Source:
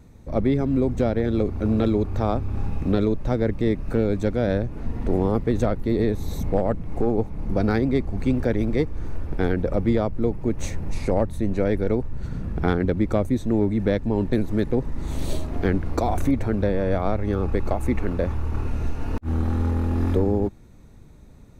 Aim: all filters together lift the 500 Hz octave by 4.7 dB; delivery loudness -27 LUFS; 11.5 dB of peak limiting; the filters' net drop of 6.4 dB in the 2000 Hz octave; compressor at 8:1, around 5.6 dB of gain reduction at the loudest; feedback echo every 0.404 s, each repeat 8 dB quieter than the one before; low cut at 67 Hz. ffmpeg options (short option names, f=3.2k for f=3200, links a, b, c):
-af "highpass=67,equalizer=f=500:t=o:g=6,equalizer=f=2k:t=o:g=-9,acompressor=threshold=-19dB:ratio=8,alimiter=limit=-20.5dB:level=0:latency=1,aecho=1:1:404|808|1212|1616|2020:0.398|0.159|0.0637|0.0255|0.0102,volume=3dB"